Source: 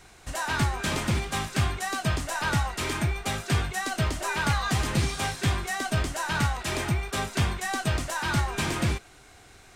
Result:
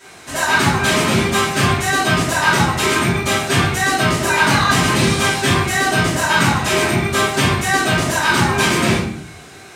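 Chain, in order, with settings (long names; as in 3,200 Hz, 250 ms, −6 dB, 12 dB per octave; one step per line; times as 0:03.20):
high-pass filter 190 Hz 12 dB per octave
rectangular room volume 100 cubic metres, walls mixed, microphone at 2.8 metres
level +3 dB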